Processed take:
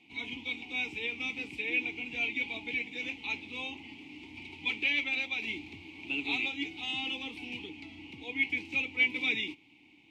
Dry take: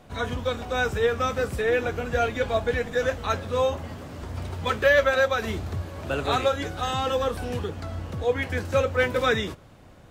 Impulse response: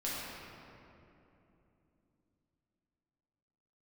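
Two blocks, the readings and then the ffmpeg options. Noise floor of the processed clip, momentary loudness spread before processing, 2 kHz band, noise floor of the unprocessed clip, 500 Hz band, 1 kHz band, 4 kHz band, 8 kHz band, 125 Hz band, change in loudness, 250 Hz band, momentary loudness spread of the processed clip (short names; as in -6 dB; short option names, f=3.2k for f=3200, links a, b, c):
-60 dBFS, 11 LU, -3.5 dB, -50 dBFS, -25.0 dB, -20.5 dB, -2.0 dB, under -15 dB, -24.5 dB, -7.0 dB, -7.5 dB, 17 LU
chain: -filter_complex "[0:a]asplit=3[a][b][c];[a]bandpass=f=300:t=q:w=8,volume=0dB[d];[b]bandpass=f=870:t=q:w=8,volume=-6dB[e];[c]bandpass=f=2.24k:t=q:w=8,volume=-9dB[f];[d][e][f]amix=inputs=3:normalize=0,highshelf=f=1.8k:t=q:w=3:g=14"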